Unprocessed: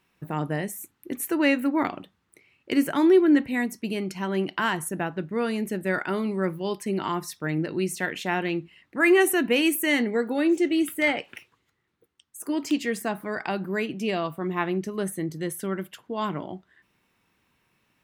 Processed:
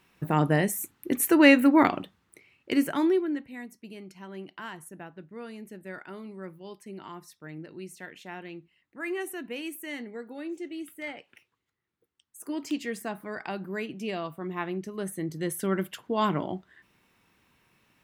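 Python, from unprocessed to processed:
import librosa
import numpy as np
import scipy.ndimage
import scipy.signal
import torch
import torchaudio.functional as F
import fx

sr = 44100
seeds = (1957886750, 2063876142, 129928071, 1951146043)

y = fx.gain(x, sr, db=fx.line((1.96, 5.0), (3.03, -4.0), (3.41, -14.5), (11.24, -14.5), (12.43, -6.0), (14.93, -6.0), (15.81, 3.0)))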